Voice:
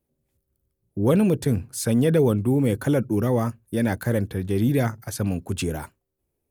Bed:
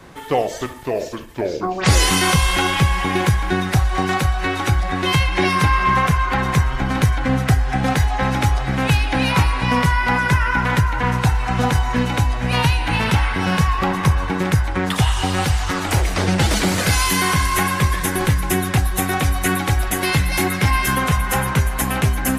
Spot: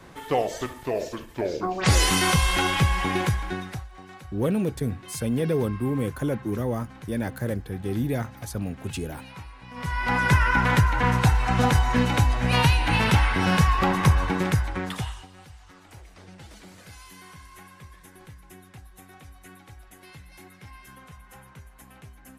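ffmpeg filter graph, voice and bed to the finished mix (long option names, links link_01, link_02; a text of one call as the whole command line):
ffmpeg -i stem1.wav -i stem2.wav -filter_complex "[0:a]adelay=3350,volume=-5.5dB[link_01];[1:a]volume=18dB,afade=type=out:start_time=3.07:duration=0.81:silence=0.0944061,afade=type=in:start_time=9.74:duration=0.59:silence=0.0707946,afade=type=out:start_time=14.19:duration=1.08:silence=0.0473151[link_02];[link_01][link_02]amix=inputs=2:normalize=0" out.wav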